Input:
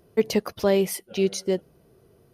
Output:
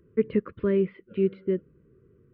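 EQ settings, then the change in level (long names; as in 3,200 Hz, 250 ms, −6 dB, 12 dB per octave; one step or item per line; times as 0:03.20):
Gaussian smoothing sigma 4.6 samples
Butterworth band-reject 750 Hz, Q 0.94
0.0 dB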